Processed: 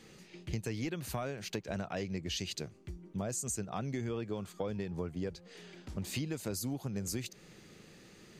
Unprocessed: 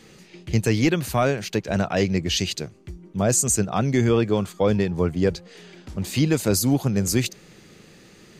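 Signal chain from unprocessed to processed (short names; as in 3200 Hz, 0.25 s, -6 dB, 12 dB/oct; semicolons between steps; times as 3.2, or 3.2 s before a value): compressor, threshold -27 dBFS, peak gain reduction 12 dB; gain -7 dB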